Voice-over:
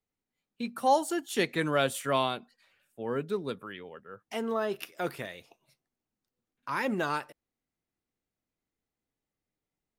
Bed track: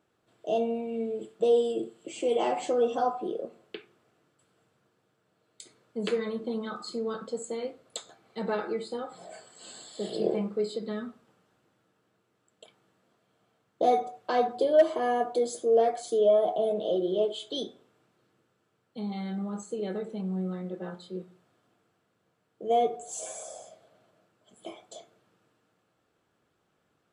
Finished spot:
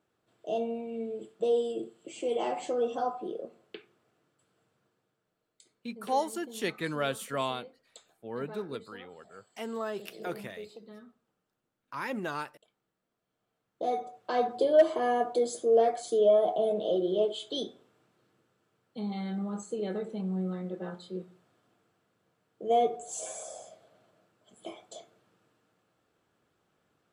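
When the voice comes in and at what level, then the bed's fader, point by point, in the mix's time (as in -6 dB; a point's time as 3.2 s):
5.25 s, -4.5 dB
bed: 4.86 s -4 dB
5.82 s -15 dB
13.1 s -15 dB
14.59 s -0.5 dB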